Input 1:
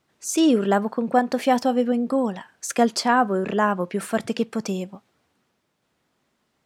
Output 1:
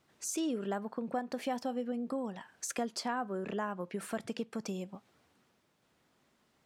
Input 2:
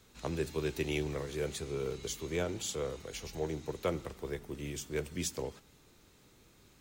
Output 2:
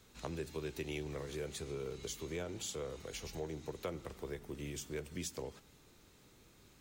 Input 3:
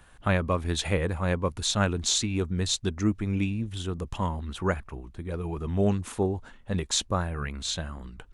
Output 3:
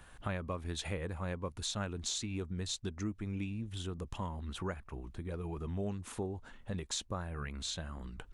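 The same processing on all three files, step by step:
downward compressor 2.5 to 1, threshold −39 dBFS
level −1 dB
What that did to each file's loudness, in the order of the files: −15.0, −5.5, −11.0 LU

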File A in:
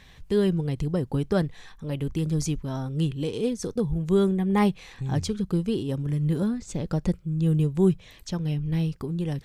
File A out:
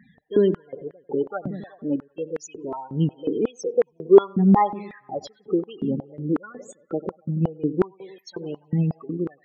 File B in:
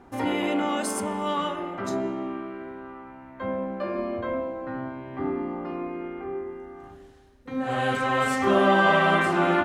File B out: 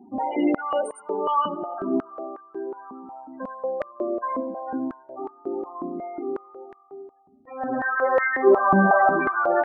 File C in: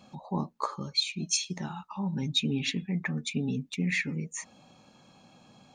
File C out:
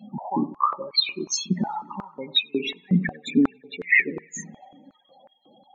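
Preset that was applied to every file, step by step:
spectral peaks only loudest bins 16
delay with a low-pass on its return 93 ms, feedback 61%, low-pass 1,300 Hz, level −15 dB
high-pass on a step sequencer 5.5 Hz 210–1,800 Hz
loudness normalisation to −24 LKFS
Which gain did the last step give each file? +0.5, −1.5, +5.0 decibels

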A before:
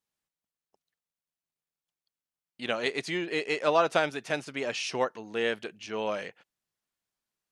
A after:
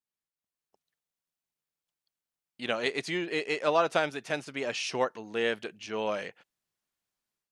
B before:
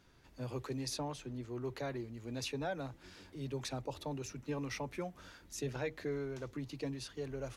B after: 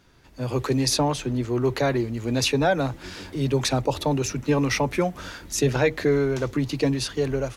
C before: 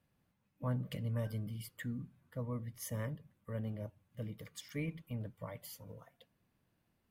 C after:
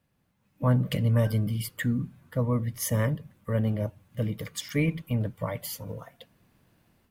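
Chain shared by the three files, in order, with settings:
automatic gain control gain up to 10 dB
normalise the peak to −12 dBFS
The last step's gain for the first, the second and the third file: −9.5, +7.5, +3.5 decibels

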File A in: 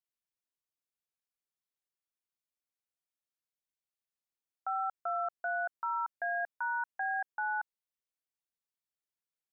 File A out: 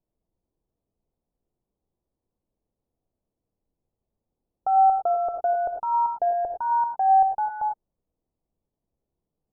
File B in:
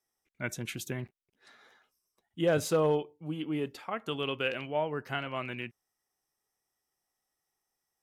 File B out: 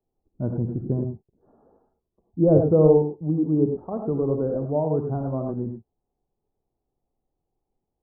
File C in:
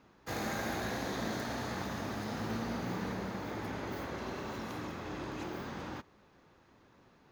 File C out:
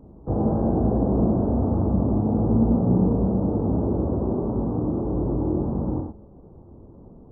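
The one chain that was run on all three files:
Gaussian smoothing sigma 13 samples
low-shelf EQ 66 Hz +12 dB
reverb whose tail is shaped and stops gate 130 ms rising, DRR 3.5 dB
loudness normalisation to −23 LKFS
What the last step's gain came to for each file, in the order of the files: +22.5, +12.0, +16.5 decibels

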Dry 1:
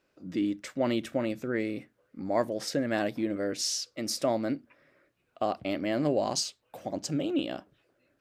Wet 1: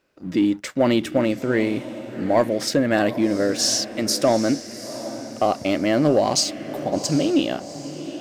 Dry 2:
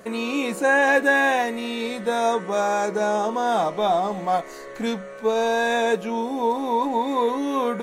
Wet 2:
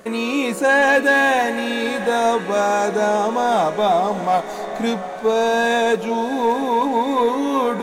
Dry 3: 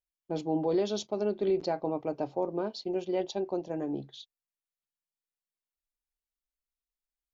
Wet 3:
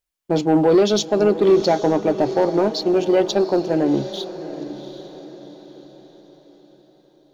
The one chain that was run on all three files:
leveller curve on the samples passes 1
feedback delay with all-pass diffusion 761 ms, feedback 43%, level −12.5 dB
normalise the peak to −6 dBFS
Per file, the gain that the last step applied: +6.0, +0.5, +11.5 decibels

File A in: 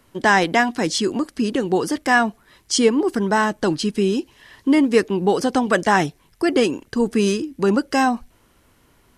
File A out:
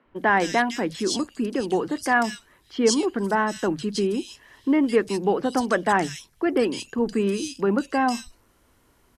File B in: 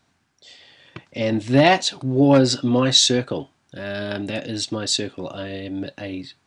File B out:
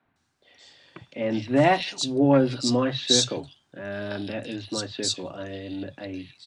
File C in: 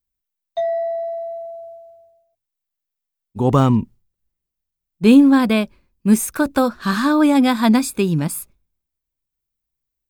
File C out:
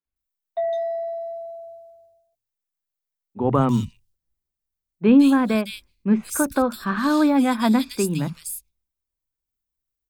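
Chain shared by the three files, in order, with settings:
three-band delay without the direct sound mids, lows, highs 50/160 ms, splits 150/2,800 Hz
normalise the peak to −6 dBFS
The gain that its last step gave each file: −3.5, −4.0, −3.0 decibels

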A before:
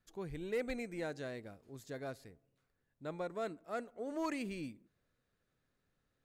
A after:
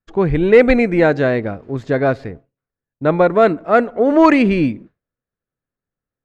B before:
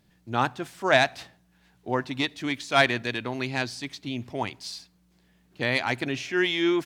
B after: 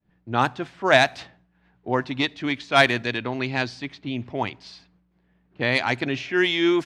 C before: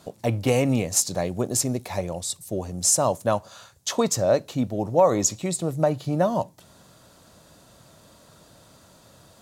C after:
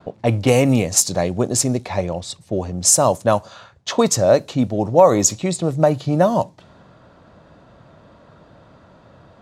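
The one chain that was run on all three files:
downward expander −58 dBFS
low-pass that shuts in the quiet parts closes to 1,900 Hz, open at −17.5 dBFS
normalise the peak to −1.5 dBFS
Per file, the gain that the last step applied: +27.5, +3.5, +6.5 decibels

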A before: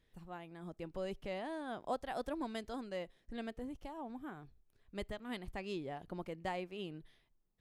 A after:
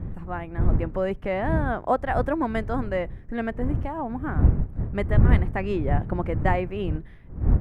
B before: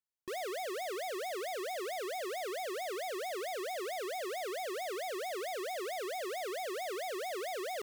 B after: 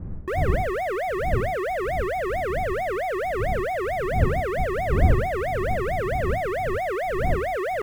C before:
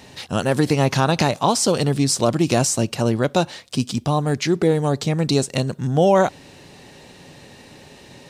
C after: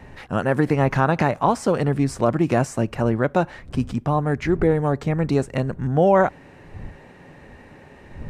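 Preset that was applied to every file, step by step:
wind on the microphone 98 Hz −39 dBFS
high shelf with overshoot 2,700 Hz −13 dB, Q 1.5
normalise the peak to −6 dBFS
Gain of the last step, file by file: +14.5, +12.0, −1.5 decibels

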